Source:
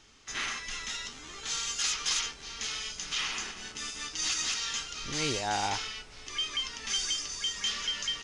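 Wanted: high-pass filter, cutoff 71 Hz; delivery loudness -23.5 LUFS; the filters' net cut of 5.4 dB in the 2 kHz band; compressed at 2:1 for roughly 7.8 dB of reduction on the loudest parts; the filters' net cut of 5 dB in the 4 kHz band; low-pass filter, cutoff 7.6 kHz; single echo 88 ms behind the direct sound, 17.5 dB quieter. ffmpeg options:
-af "highpass=71,lowpass=7600,equalizer=f=2000:t=o:g=-5.5,equalizer=f=4000:t=o:g=-4.5,acompressor=threshold=0.00708:ratio=2,aecho=1:1:88:0.133,volume=7.5"

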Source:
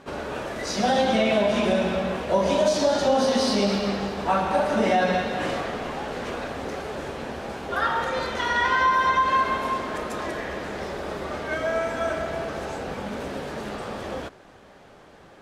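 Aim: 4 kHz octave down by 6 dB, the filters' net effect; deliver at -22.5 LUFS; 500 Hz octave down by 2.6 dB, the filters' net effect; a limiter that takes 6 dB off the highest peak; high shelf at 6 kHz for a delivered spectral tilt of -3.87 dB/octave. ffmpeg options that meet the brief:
-af "equalizer=f=500:t=o:g=-3,equalizer=f=4000:t=o:g=-5.5,highshelf=f=6000:g=-6.5,volume=2,alimiter=limit=0.282:level=0:latency=1"

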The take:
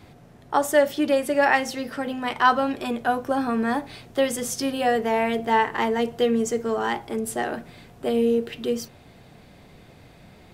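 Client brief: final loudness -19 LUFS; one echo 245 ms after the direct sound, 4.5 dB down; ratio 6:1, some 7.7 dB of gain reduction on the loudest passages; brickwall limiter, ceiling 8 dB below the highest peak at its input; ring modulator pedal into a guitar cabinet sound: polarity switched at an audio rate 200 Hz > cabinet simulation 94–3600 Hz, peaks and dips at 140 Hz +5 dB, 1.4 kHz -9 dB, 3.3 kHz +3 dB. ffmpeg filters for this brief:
-af "acompressor=threshold=0.0891:ratio=6,alimiter=limit=0.119:level=0:latency=1,aecho=1:1:245:0.596,aeval=exprs='val(0)*sgn(sin(2*PI*200*n/s))':c=same,highpass=94,equalizer=f=140:t=q:w=4:g=5,equalizer=f=1400:t=q:w=4:g=-9,equalizer=f=3300:t=q:w=4:g=3,lowpass=f=3600:w=0.5412,lowpass=f=3600:w=1.3066,volume=2.99"

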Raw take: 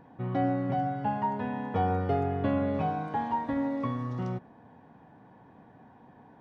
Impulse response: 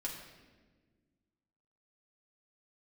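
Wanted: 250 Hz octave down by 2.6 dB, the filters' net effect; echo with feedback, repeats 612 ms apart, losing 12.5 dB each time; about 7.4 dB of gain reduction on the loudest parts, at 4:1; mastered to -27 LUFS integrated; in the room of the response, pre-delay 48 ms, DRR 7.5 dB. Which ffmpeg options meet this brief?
-filter_complex "[0:a]equalizer=f=250:t=o:g=-3,acompressor=threshold=0.0224:ratio=4,aecho=1:1:612|1224|1836:0.237|0.0569|0.0137,asplit=2[s0][s1];[1:a]atrim=start_sample=2205,adelay=48[s2];[s1][s2]afir=irnorm=-1:irlink=0,volume=0.398[s3];[s0][s3]amix=inputs=2:normalize=0,volume=2.82"

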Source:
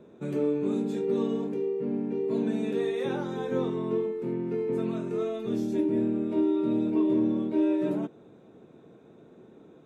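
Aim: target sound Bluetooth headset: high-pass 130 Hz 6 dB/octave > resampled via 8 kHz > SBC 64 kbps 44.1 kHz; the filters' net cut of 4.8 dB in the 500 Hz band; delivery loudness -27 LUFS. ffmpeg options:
-af "highpass=f=130:p=1,equalizer=f=500:t=o:g=-6,aresample=8000,aresample=44100,volume=1.78" -ar 44100 -c:a sbc -b:a 64k

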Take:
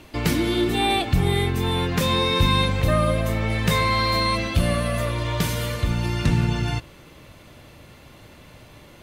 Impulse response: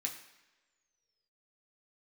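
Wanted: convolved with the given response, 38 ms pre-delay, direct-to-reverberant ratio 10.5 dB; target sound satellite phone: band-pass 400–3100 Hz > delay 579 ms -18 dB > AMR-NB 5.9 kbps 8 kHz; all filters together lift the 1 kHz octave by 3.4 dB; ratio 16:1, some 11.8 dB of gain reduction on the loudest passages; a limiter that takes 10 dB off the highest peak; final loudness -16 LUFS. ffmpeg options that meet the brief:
-filter_complex "[0:a]equalizer=f=1000:t=o:g=4,acompressor=threshold=0.0501:ratio=16,alimiter=level_in=1.33:limit=0.0631:level=0:latency=1,volume=0.75,asplit=2[s0][s1];[1:a]atrim=start_sample=2205,adelay=38[s2];[s1][s2]afir=irnorm=-1:irlink=0,volume=0.282[s3];[s0][s3]amix=inputs=2:normalize=0,highpass=400,lowpass=3100,aecho=1:1:579:0.126,volume=16.8" -ar 8000 -c:a libopencore_amrnb -b:a 5900

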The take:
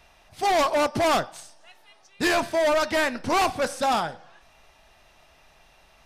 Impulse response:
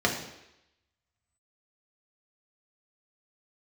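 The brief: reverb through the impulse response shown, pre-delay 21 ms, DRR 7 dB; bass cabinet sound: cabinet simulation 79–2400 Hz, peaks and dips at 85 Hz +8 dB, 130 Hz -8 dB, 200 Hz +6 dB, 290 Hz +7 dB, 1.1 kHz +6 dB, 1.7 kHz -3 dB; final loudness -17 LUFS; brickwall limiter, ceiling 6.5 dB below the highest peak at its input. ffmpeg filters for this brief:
-filter_complex "[0:a]alimiter=limit=0.0794:level=0:latency=1,asplit=2[s0][s1];[1:a]atrim=start_sample=2205,adelay=21[s2];[s1][s2]afir=irnorm=-1:irlink=0,volume=0.1[s3];[s0][s3]amix=inputs=2:normalize=0,highpass=f=79:w=0.5412,highpass=f=79:w=1.3066,equalizer=f=85:t=q:w=4:g=8,equalizer=f=130:t=q:w=4:g=-8,equalizer=f=200:t=q:w=4:g=6,equalizer=f=290:t=q:w=4:g=7,equalizer=f=1100:t=q:w=4:g=6,equalizer=f=1700:t=q:w=4:g=-3,lowpass=f=2400:w=0.5412,lowpass=f=2400:w=1.3066,volume=2.82"

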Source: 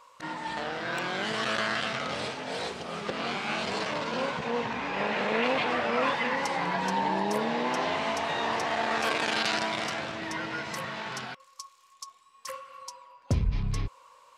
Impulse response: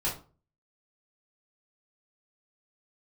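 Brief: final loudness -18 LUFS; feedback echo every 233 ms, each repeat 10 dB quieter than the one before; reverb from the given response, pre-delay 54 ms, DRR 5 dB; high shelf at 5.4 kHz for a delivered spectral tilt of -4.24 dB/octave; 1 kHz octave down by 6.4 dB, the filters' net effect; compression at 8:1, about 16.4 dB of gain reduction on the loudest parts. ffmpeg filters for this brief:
-filter_complex "[0:a]equalizer=f=1000:t=o:g=-8,highshelf=f=5400:g=-4.5,acompressor=threshold=0.0112:ratio=8,aecho=1:1:233|466|699|932:0.316|0.101|0.0324|0.0104,asplit=2[s0][s1];[1:a]atrim=start_sample=2205,adelay=54[s2];[s1][s2]afir=irnorm=-1:irlink=0,volume=0.266[s3];[s0][s3]amix=inputs=2:normalize=0,volume=13.3"

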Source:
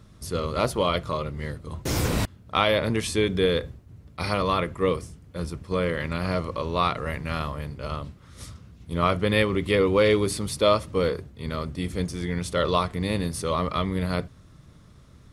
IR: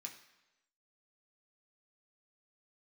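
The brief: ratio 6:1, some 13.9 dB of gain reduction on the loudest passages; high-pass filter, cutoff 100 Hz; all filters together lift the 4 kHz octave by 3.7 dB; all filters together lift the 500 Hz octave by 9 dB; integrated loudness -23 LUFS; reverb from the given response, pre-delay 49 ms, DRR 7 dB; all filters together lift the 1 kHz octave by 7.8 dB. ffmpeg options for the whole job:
-filter_complex "[0:a]highpass=100,equalizer=f=500:t=o:g=8.5,equalizer=f=1000:t=o:g=7.5,equalizer=f=4000:t=o:g=4,acompressor=threshold=0.0794:ratio=6,asplit=2[s0][s1];[1:a]atrim=start_sample=2205,adelay=49[s2];[s1][s2]afir=irnorm=-1:irlink=0,volume=0.75[s3];[s0][s3]amix=inputs=2:normalize=0,volume=1.58"

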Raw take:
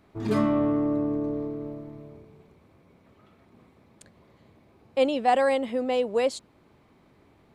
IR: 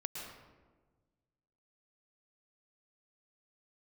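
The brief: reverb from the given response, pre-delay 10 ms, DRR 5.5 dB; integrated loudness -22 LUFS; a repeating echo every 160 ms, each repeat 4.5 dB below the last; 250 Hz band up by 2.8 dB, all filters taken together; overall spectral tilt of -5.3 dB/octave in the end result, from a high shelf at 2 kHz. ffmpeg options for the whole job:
-filter_complex "[0:a]equalizer=f=250:t=o:g=3.5,highshelf=f=2000:g=-8.5,aecho=1:1:160|320|480|640|800|960|1120|1280|1440:0.596|0.357|0.214|0.129|0.0772|0.0463|0.0278|0.0167|0.01,asplit=2[s0][s1];[1:a]atrim=start_sample=2205,adelay=10[s2];[s1][s2]afir=irnorm=-1:irlink=0,volume=0.531[s3];[s0][s3]amix=inputs=2:normalize=0,volume=0.668"

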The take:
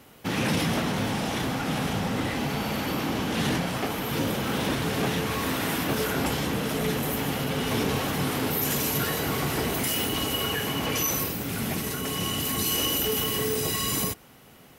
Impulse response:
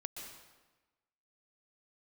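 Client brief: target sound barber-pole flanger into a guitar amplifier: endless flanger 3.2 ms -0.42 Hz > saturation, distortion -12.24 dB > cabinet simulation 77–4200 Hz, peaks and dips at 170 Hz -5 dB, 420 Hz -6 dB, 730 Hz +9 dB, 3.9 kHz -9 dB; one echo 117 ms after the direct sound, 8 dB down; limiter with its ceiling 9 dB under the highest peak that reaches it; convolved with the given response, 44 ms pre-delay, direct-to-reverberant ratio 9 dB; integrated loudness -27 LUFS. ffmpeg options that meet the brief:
-filter_complex "[0:a]alimiter=level_in=1.12:limit=0.0631:level=0:latency=1,volume=0.891,aecho=1:1:117:0.398,asplit=2[s0][s1];[1:a]atrim=start_sample=2205,adelay=44[s2];[s1][s2]afir=irnorm=-1:irlink=0,volume=0.447[s3];[s0][s3]amix=inputs=2:normalize=0,asplit=2[s4][s5];[s5]adelay=3.2,afreqshift=-0.42[s6];[s4][s6]amix=inputs=2:normalize=1,asoftclip=threshold=0.0188,highpass=77,equalizer=f=170:t=q:w=4:g=-5,equalizer=f=420:t=q:w=4:g=-6,equalizer=f=730:t=q:w=4:g=9,equalizer=f=3900:t=q:w=4:g=-9,lowpass=f=4200:w=0.5412,lowpass=f=4200:w=1.3066,volume=4.47"

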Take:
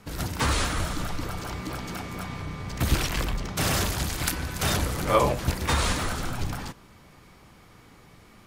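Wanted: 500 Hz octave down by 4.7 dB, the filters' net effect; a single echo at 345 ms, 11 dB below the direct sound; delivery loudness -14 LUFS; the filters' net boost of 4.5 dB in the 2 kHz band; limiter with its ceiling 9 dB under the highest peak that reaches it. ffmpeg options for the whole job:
-af "equalizer=f=500:t=o:g=-6,equalizer=f=2000:t=o:g=6,alimiter=limit=0.133:level=0:latency=1,aecho=1:1:345:0.282,volume=5.62"

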